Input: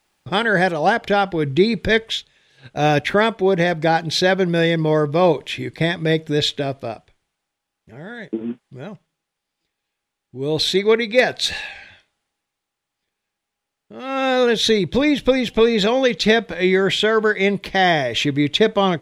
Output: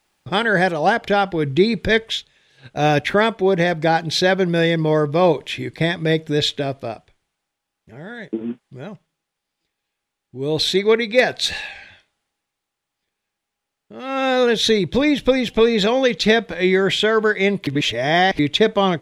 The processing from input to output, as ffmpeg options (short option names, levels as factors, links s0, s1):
-filter_complex "[0:a]asplit=3[s0][s1][s2];[s0]atrim=end=17.672[s3];[s1]atrim=start=17.668:end=18.392,asetpts=PTS-STARTPTS,areverse[s4];[s2]atrim=start=18.388[s5];[s3][s4]acrossfade=d=0.004:c1=hsin:c2=hsin[s6];[s6][s5]acrossfade=d=0.004:c1=hsin:c2=hsin"